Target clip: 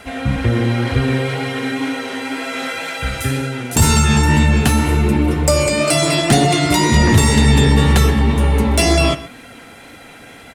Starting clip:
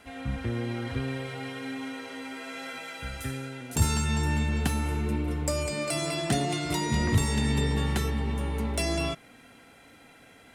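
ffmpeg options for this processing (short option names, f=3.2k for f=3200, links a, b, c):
-filter_complex "[0:a]asplit=2[a][b];[b]adelay=128.3,volume=-16dB,highshelf=f=4k:g=-2.89[c];[a][c]amix=inputs=2:normalize=0,apsyclip=19.5dB,flanger=delay=1.4:depth=8.6:regen=-41:speed=2:shape=sinusoidal,volume=-1dB"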